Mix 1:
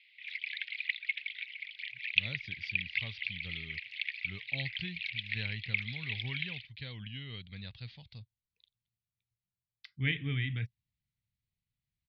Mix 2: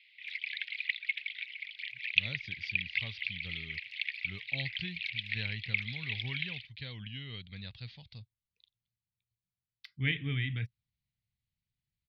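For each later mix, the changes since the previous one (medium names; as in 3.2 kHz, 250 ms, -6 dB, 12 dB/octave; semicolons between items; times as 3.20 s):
master: remove distance through air 52 m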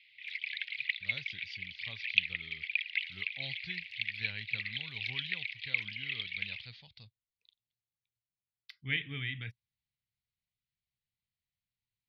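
speech: entry -1.15 s; master: add bass shelf 440 Hz -9 dB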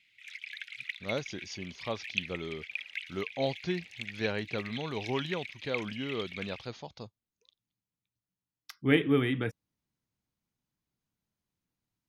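speech +6.0 dB; master: remove FFT filter 120 Hz 0 dB, 350 Hz -21 dB, 1.3 kHz -13 dB, 2 kHz +5 dB, 4.5 kHz +5 dB, 6.7 kHz -22 dB, 10 kHz -15 dB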